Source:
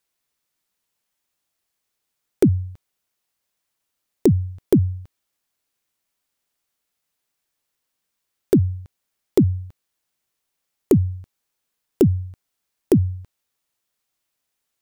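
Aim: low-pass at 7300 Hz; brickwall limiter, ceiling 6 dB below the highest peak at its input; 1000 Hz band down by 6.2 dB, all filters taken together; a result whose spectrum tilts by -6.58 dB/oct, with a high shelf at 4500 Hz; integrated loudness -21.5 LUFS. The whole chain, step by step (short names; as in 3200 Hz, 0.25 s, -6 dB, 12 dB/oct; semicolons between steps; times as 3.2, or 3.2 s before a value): LPF 7300 Hz; bell 1000 Hz -9 dB; high shelf 4500 Hz -4.5 dB; gain +2 dB; limiter -10.5 dBFS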